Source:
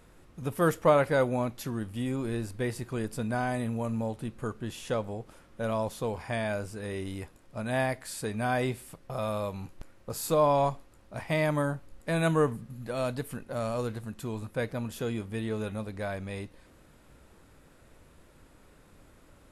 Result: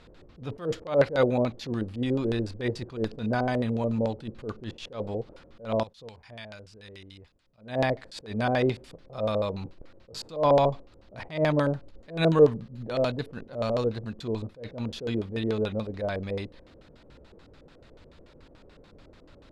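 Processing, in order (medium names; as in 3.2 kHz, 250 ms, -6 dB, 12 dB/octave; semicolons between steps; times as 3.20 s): LFO low-pass square 6.9 Hz 500–4200 Hz; 5.83–7.58 s: amplifier tone stack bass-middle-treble 5-5-5; attacks held to a fixed rise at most 170 dB/s; trim +3 dB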